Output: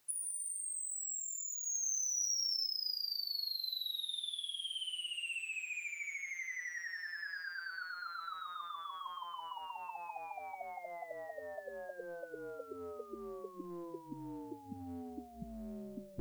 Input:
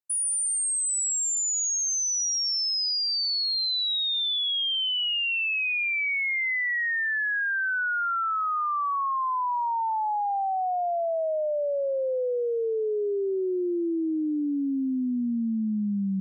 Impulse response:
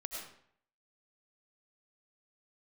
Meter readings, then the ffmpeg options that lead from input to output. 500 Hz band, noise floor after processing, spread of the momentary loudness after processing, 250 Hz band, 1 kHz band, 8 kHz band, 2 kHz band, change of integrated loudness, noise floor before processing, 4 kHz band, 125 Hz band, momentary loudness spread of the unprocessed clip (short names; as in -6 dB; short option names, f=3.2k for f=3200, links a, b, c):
-19.5 dB, -52 dBFS, 13 LU, -21.0 dB, -18.0 dB, -12.0 dB, -16.0 dB, -14.5 dB, -27 dBFS, -13.0 dB, n/a, 4 LU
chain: -af "acontrast=67,afftfilt=real='re*lt(hypot(re,im),0.112)':imag='im*lt(hypot(re,im),0.112)':win_size=1024:overlap=0.75,volume=15dB"